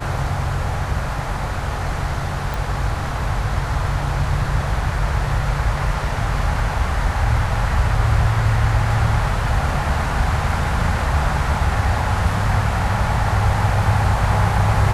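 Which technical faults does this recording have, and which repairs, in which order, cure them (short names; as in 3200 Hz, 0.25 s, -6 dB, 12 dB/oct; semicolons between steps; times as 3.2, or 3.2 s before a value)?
2.54 pop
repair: de-click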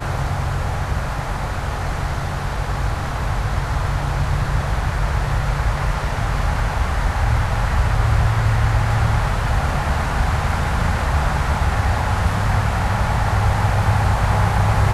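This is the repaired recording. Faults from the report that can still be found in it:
none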